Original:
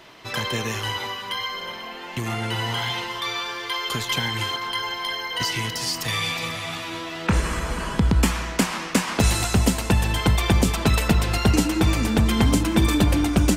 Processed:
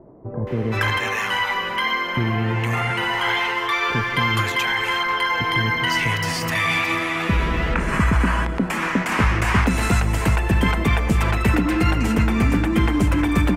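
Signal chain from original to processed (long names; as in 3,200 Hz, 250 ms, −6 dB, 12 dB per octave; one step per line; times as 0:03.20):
high shelf with overshoot 2,900 Hz −9 dB, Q 1.5
in parallel at +1 dB: compressor whose output falls as the input rises −27 dBFS, ratio −1
on the sum: multiband delay without the direct sound lows, highs 470 ms, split 620 Hz
level −1 dB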